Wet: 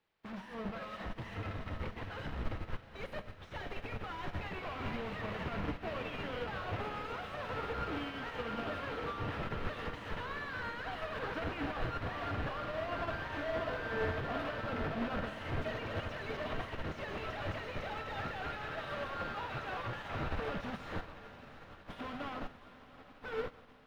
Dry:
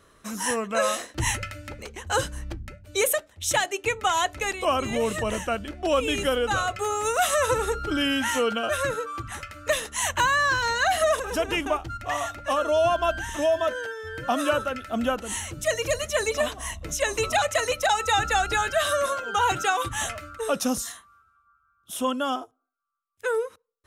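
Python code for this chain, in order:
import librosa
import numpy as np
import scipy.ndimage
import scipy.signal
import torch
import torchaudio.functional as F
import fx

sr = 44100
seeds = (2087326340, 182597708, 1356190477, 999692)

y = scipy.signal.sosfilt(scipy.signal.butter(4, 88.0, 'highpass', fs=sr, output='sos'), x)
y = fx.peak_eq(y, sr, hz=400.0, db=-9.5, octaves=2.4)
y = fx.schmitt(y, sr, flips_db=-40.0)
y = fx.quant_dither(y, sr, seeds[0], bits=8, dither='triangular')
y = 10.0 ** (-38.0 / 20.0) * np.tanh(y / 10.0 ** (-38.0 / 20.0))
y = fx.air_absorb(y, sr, metres=370.0)
y = fx.echo_diffused(y, sr, ms=736, feedback_pct=78, wet_db=-7.5)
y = fx.rev_plate(y, sr, seeds[1], rt60_s=1.6, hf_ratio=0.95, predelay_ms=0, drr_db=6.5)
y = fx.upward_expand(y, sr, threshold_db=-53.0, expansion=2.5)
y = F.gain(torch.from_numpy(y), 5.5).numpy()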